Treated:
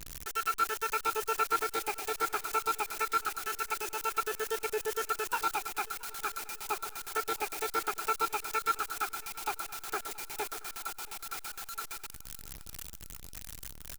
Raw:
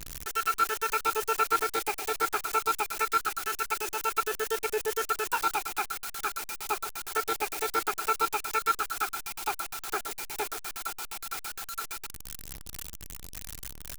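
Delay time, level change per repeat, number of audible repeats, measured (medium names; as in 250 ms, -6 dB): 676 ms, -6.0 dB, 3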